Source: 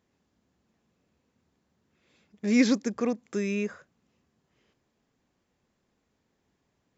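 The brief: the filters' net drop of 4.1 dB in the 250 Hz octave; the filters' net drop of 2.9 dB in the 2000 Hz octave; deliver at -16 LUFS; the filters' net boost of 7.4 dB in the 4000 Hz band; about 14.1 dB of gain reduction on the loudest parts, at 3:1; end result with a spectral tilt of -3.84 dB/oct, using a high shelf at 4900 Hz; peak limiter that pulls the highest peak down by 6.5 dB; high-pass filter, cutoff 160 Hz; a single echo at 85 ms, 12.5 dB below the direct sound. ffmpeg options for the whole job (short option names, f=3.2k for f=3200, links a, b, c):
-af "highpass=160,equalizer=f=250:t=o:g=-3.5,equalizer=f=2k:t=o:g=-7,equalizer=f=4k:t=o:g=8,highshelf=f=4.9k:g=5,acompressor=threshold=-40dB:ratio=3,alimiter=level_in=9dB:limit=-24dB:level=0:latency=1,volume=-9dB,aecho=1:1:85:0.237,volume=27.5dB"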